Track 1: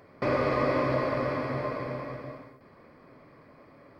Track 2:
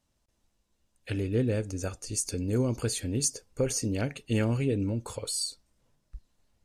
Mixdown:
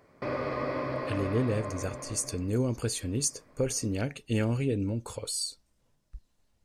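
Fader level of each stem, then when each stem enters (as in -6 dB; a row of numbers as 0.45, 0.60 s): -6.0, -1.0 dB; 0.00, 0.00 s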